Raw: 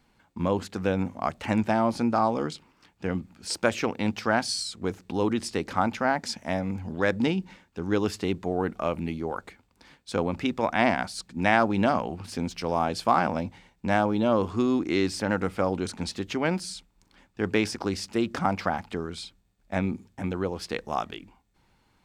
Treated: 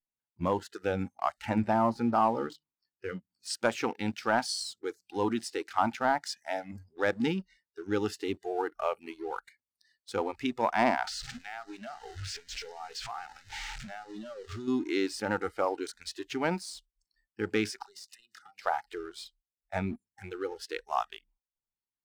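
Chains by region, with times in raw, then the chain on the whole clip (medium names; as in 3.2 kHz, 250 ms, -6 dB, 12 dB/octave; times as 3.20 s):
1.49–3.06 s: low-pass 3.2 kHz 6 dB/octave + bass shelf 170 Hz +3.5 dB + hum notches 50/100/150/200/250/300 Hz
11.07–14.68 s: jump at every zero crossing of -27 dBFS + low-pass 7.4 kHz 24 dB/octave + compression 8:1, threshold -30 dBFS
17.83–18.66 s: treble shelf 2.2 kHz +7.5 dB + compression 12:1, threshold -37 dBFS + phase dispersion lows, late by 53 ms, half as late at 550 Hz
whole clip: spectral noise reduction 30 dB; dynamic bell 980 Hz, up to +6 dB, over -37 dBFS, Q 1.6; waveshaping leveller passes 1; trim -8 dB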